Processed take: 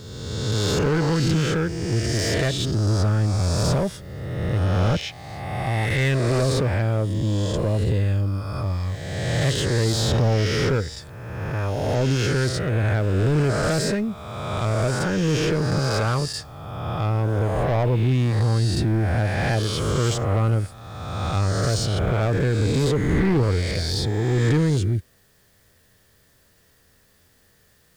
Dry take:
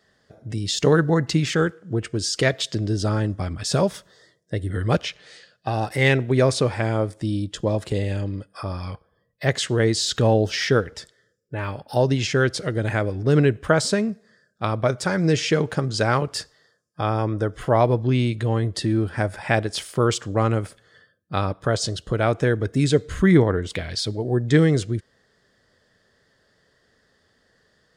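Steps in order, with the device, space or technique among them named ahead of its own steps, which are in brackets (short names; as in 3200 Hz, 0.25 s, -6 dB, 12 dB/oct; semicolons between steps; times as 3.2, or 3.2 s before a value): spectral swells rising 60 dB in 1.66 s; open-reel tape (soft clip -14.5 dBFS, distortion -12 dB; bell 88 Hz +3 dB 0.85 oct; white noise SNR 36 dB); low shelf 150 Hz +11 dB; gain -4.5 dB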